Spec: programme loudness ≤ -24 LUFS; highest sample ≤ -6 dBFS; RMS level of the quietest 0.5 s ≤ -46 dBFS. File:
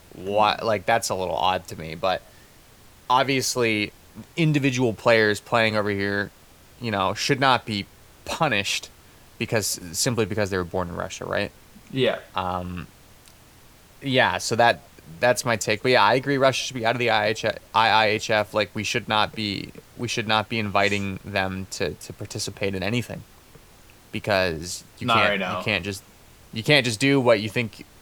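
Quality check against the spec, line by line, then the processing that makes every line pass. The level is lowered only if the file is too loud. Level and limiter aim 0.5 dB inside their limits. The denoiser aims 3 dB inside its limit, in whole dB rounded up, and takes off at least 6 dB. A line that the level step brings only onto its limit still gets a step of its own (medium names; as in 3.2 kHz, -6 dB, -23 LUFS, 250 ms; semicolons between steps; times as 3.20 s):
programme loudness -23.0 LUFS: fail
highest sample -3.5 dBFS: fail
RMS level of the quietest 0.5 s -51 dBFS: pass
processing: trim -1.5 dB; peak limiter -6.5 dBFS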